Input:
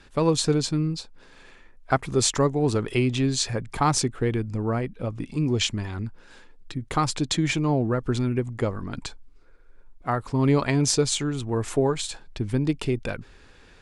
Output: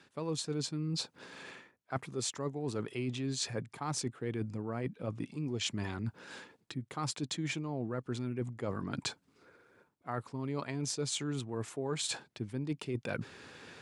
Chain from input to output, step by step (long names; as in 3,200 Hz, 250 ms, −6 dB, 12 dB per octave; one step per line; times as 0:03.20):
high-pass filter 110 Hz 24 dB per octave
reversed playback
downward compressor 10 to 1, threshold −36 dBFS, peak gain reduction 21 dB
reversed playback
level +3 dB